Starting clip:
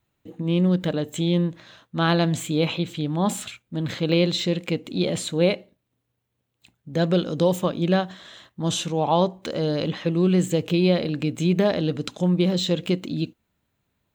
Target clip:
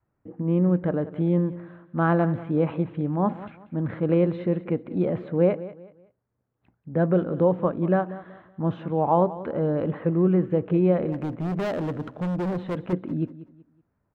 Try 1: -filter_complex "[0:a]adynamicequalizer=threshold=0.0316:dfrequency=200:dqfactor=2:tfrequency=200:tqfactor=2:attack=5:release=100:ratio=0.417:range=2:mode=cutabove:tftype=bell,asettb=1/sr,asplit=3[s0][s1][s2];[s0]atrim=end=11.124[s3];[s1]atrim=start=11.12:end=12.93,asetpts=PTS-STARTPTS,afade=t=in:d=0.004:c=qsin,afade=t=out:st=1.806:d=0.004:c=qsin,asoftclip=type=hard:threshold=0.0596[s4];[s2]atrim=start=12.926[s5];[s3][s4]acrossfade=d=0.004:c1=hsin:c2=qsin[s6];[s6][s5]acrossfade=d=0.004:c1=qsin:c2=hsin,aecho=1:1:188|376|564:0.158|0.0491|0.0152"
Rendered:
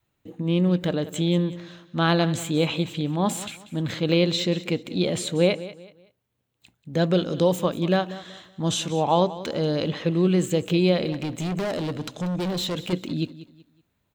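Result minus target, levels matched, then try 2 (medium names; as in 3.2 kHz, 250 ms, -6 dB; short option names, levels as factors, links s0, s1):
2 kHz band +5.0 dB
-filter_complex "[0:a]adynamicequalizer=threshold=0.0316:dfrequency=200:dqfactor=2:tfrequency=200:tqfactor=2:attack=5:release=100:ratio=0.417:range=2:mode=cutabove:tftype=bell,lowpass=f=1600:w=0.5412,lowpass=f=1600:w=1.3066,asettb=1/sr,asplit=3[s0][s1][s2];[s0]atrim=end=11.124[s3];[s1]atrim=start=11.12:end=12.93,asetpts=PTS-STARTPTS,afade=t=in:d=0.004:c=qsin,afade=t=out:st=1.806:d=0.004:c=qsin,asoftclip=type=hard:threshold=0.0596[s4];[s2]atrim=start=12.926[s5];[s3][s4]acrossfade=d=0.004:c1=hsin:c2=qsin[s6];[s6][s5]acrossfade=d=0.004:c1=qsin:c2=hsin,aecho=1:1:188|376|564:0.158|0.0491|0.0152"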